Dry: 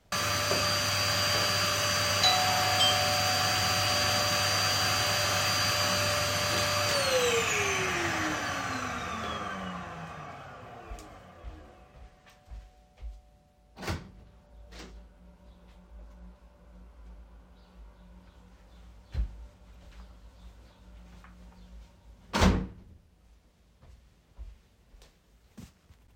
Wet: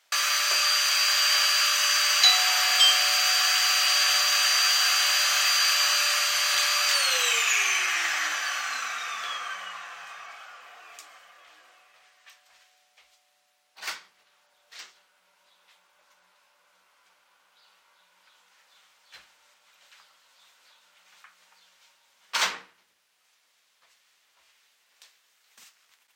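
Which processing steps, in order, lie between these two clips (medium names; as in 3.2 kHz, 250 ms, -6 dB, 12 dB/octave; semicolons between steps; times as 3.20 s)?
high-pass 1.5 kHz 12 dB/octave; trim +7 dB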